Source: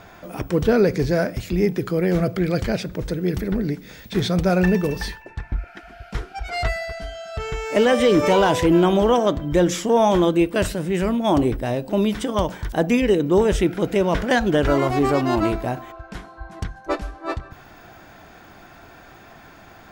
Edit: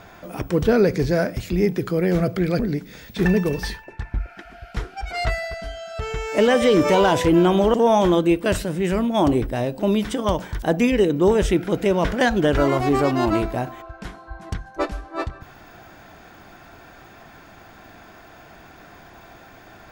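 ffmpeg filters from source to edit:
ffmpeg -i in.wav -filter_complex "[0:a]asplit=4[link_01][link_02][link_03][link_04];[link_01]atrim=end=2.592[link_05];[link_02]atrim=start=3.548:end=4.212[link_06];[link_03]atrim=start=4.628:end=9.122[link_07];[link_04]atrim=start=9.838[link_08];[link_05][link_06]acrossfade=duration=0.004:curve1=hsin:curve2=hsin[link_09];[link_09][link_07]acrossfade=duration=0.004:curve1=hsin:curve2=hsin[link_10];[link_10][link_08]acrossfade=duration=0.004:curve1=hsin:curve2=hsin" out.wav

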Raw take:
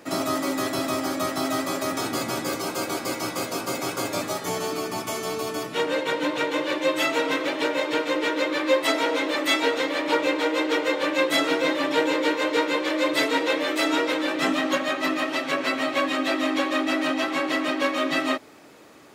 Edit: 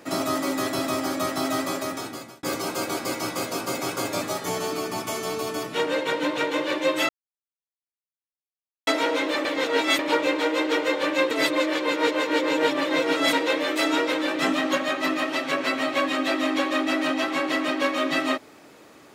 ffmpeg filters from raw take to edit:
ffmpeg -i in.wav -filter_complex "[0:a]asplit=8[link_01][link_02][link_03][link_04][link_05][link_06][link_07][link_08];[link_01]atrim=end=2.43,asetpts=PTS-STARTPTS,afade=type=out:start_time=1.67:duration=0.76[link_09];[link_02]atrim=start=2.43:end=7.09,asetpts=PTS-STARTPTS,afade=type=in:duration=0.004:curve=hsin,afade=type=out:start_time=4.656:duration=0.004:curve=hsin[link_10];[link_03]atrim=start=7.09:end=8.87,asetpts=PTS-STARTPTS,volume=0[link_11];[link_04]atrim=start=8.87:end=9.452,asetpts=PTS-STARTPTS,afade=type=in:duration=0.004:curve=hsin[link_12];[link_05]atrim=start=9.448:end=9.992,asetpts=PTS-STARTPTS,areverse[link_13];[link_06]atrim=start=9.988:end=11.312[link_14];[link_07]atrim=start=11.308:end=13.332,asetpts=PTS-STARTPTS,areverse[link_15];[link_08]atrim=start=13.328[link_16];[link_09][link_10][link_11][link_12]concat=n=4:v=0:a=1[link_17];[link_17][link_13]acrossfade=duration=0.004:curve1=hsin:curve2=hsin[link_18];[link_18][link_14]acrossfade=duration=0.004:curve1=hsin:curve2=hsin[link_19];[link_19][link_15]acrossfade=duration=0.004:curve1=hsin:curve2=hsin[link_20];[link_20][link_16]acrossfade=duration=0.004:curve1=hsin:curve2=hsin" out.wav

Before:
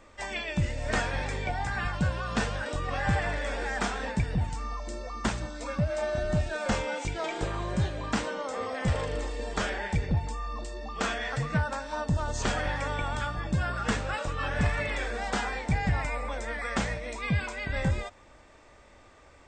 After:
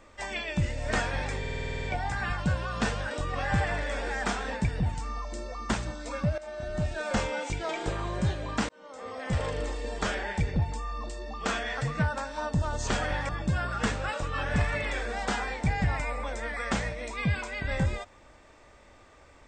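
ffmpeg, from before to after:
ffmpeg -i in.wav -filter_complex "[0:a]asplit=13[link_01][link_02][link_03][link_04][link_05][link_06][link_07][link_08][link_09][link_10][link_11][link_12][link_13];[link_01]atrim=end=1.442[link_14];[link_02]atrim=start=1.388:end=1.442[link_15];[link_03]atrim=start=1.388:end=1.442[link_16];[link_04]atrim=start=1.388:end=1.442[link_17];[link_05]atrim=start=1.388:end=1.442[link_18];[link_06]atrim=start=1.388:end=1.442[link_19];[link_07]atrim=start=1.388:end=1.442[link_20];[link_08]atrim=start=1.388:end=1.442[link_21];[link_09]atrim=start=1.388:end=1.442[link_22];[link_10]atrim=start=1.388:end=5.93,asetpts=PTS-STARTPTS,afade=type=out:start_time=4.538:duration=0.004:curve=hsin:silence=0.188365[link_23];[link_11]atrim=start=5.93:end=8.24,asetpts=PTS-STARTPTS,afade=type=in:duration=0.67:silence=0.188365,afade=type=out:start_time=2.306:duration=0.004:curve=hsin[link_24];[link_12]atrim=start=8.24:end=12.842,asetpts=PTS-STARTPTS,afade=type=in:duration=0.79[link_25];[link_13]atrim=start=13.338[link_26];[link_14][link_15]acrossfade=duration=0.004:curve1=hsin:curve2=hsin[link_27];[link_27][link_16]acrossfade=duration=0.004:curve1=hsin:curve2=hsin[link_28];[link_28][link_17]acrossfade=duration=0.004:curve1=hsin:curve2=hsin[link_29];[link_29][link_18]acrossfade=duration=0.004:curve1=hsin:curve2=hsin[link_30];[link_30][link_19]acrossfade=duration=0.004:curve1=hsin:curve2=hsin[link_31];[link_31][link_20]acrossfade=duration=0.004:curve1=hsin:curve2=hsin[link_32];[link_32][link_21]acrossfade=duration=0.004:curve1=hsin:curve2=hsin[link_33];[link_33][link_22]acrossfade=duration=0.004:curve1=hsin:curve2=hsin[link_34];[link_23][link_24][link_25]concat=n=3:v=0:a=1[link_35];[link_34][link_35]acrossfade=duration=0.004:curve1=hsin:curve2=hsin[link_36];[link_36][link_26]acrossfade=duration=0.004:curve1=hsin:curve2=hsin" out.wav

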